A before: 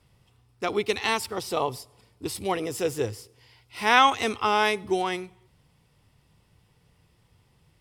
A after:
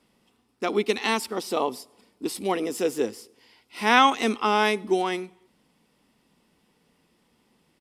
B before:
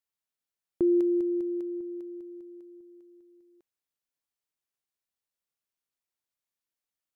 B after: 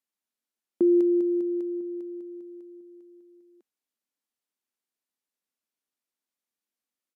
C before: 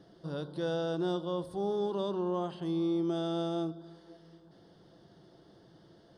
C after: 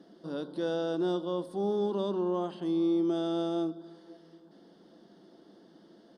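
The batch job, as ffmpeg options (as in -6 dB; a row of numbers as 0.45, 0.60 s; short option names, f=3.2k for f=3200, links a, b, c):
-af "lowshelf=f=160:t=q:w=3:g=-12,aresample=32000,aresample=44100"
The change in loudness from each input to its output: +1.0, +3.5, +2.5 LU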